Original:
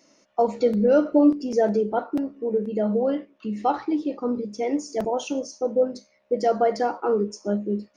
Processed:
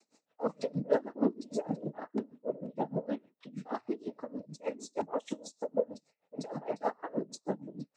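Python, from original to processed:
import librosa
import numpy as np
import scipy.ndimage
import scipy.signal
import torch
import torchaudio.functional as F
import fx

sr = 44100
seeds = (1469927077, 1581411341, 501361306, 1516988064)

y = fx.noise_vocoder(x, sr, seeds[0], bands=12)
y = y * 10.0 ** (-25 * (0.5 - 0.5 * np.cos(2.0 * np.pi * 6.4 * np.arange(len(y)) / sr)) / 20.0)
y = y * 10.0 ** (-5.0 / 20.0)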